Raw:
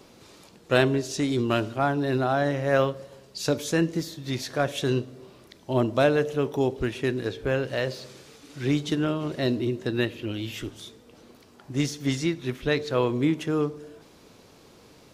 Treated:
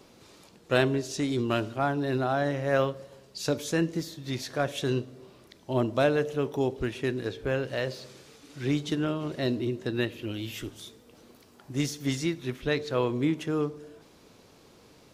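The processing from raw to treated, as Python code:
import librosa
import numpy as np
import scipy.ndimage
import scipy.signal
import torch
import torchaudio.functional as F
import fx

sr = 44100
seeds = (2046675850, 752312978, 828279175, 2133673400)

y = fx.high_shelf(x, sr, hz=10000.0, db=8.0, at=(10.12, 12.46))
y = F.gain(torch.from_numpy(y), -3.0).numpy()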